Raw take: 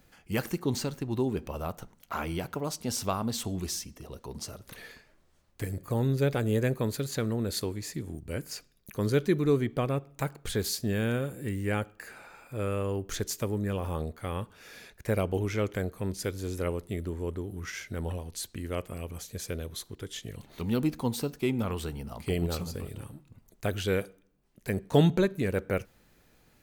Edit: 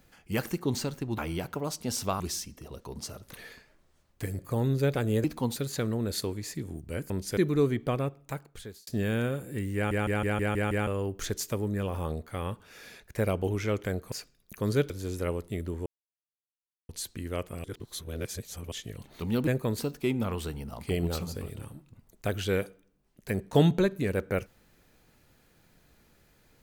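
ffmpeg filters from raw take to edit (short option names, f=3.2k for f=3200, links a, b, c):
-filter_complex "[0:a]asplit=23[a][b][c][d][e][f][g][h][i][j][k][l][m][n][o][p][q][r][s][t][u][v][w];[a]atrim=end=1.182[x];[b]atrim=start=2.178:end=3.202[y];[c]atrim=start=3.588:end=6.632[z];[d]atrim=start=20.858:end=21.182[aa];[e]atrim=start=6.948:end=8.492[ab];[f]atrim=start=16.018:end=16.292[ac];[g]atrim=start=9.268:end=10.77,asetpts=PTS-STARTPTS,afade=t=out:st=0.592:d=0.91[ad];[h]atrim=start=10.77:end=11.812,asetpts=PTS-STARTPTS,afade=t=in:d=0.004:c=hsin[ae];[i]atrim=start=11.648:end=11.812[af];[j]atrim=start=11.648:end=11.812[ag];[k]atrim=start=11.648:end=11.812[ah];[l]atrim=start=11.648:end=11.812[ai];[m]atrim=start=11.648:end=11.812[aj];[n]atrim=start=11.648:end=11.812[ak];[o]atrim=start=12.768:end=16.022[al];[p]atrim=start=8.488:end=9.272[am];[q]atrim=start=16.288:end=17.25,asetpts=PTS-STARTPTS,afade=t=out:st=0.958:d=0.004:c=hsin[an];[r]atrim=start=17.25:end=18.28,asetpts=PTS-STARTPTS,volume=0[ao];[s]atrim=start=18.28:end=19.032,asetpts=PTS-STARTPTS,afade=t=in:d=0.004:c=hsin[ap];[t]atrim=start=19.028:end=20.112,asetpts=PTS-STARTPTS,areverse[aq];[u]atrim=start=20.108:end=20.862[ar];[v]atrim=start=6.628:end=6.952[as];[w]atrim=start=21.178[at];[x][y]acrossfade=d=0.004:c1=hsin:c2=hsin[au];[au][z]acrossfade=d=0.004:c1=hsin:c2=hsin[av];[av][aa]acrossfade=d=0.004:c1=hsin:c2=hsin[aw];[aw][ab]acrossfade=d=0.004:c1=hsin:c2=hsin[ax];[ax][ac]acrossfade=d=0.004:c1=hsin:c2=hsin[ay];[ad][ae]concat=n=2:v=0:a=1[az];[ay][az]acrossfade=d=0.004:c1=hsin:c2=hsin[ba];[ba][af]acrossfade=d=0.004:c1=hsin:c2=hsin[bb];[bb][ag]acrossfade=d=0.004:c1=hsin:c2=hsin[bc];[bc][ah]acrossfade=d=0.004:c1=hsin:c2=hsin[bd];[bd][ai]acrossfade=d=0.004:c1=hsin:c2=hsin[be];[be][aj]acrossfade=d=0.004:c1=hsin:c2=hsin[bf];[bf][ak]acrossfade=d=0.004:c1=hsin:c2=hsin[bg];[bg][al]acrossfade=d=0.004:c1=hsin:c2=hsin[bh];[bh][am]acrossfade=d=0.004:c1=hsin:c2=hsin[bi];[an][ao][ap]concat=n=3:v=0:a=1[bj];[bi][bj]acrossfade=d=0.004:c1=hsin:c2=hsin[bk];[bk][aq]acrossfade=d=0.004:c1=hsin:c2=hsin[bl];[bl][ar]acrossfade=d=0.004:c1=hsin:c2=hsin[bm];[bm][as]acrossfade=d=0.004:c1=hsin:c2=hsin[bn];[bn][at]acrossfade=d=0.004:c1=hsin:c2=hsin"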